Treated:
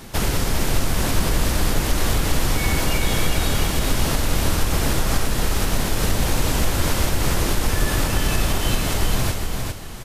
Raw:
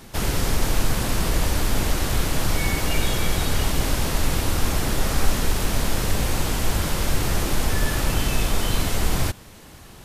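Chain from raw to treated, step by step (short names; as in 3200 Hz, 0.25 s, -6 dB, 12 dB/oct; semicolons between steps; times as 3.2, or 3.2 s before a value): compressor, threshold -20 dBFS, peak gain reduction 10 dB; feedback echo 0.405 s, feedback 28%, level -4.5 dB; gain +4.5 dB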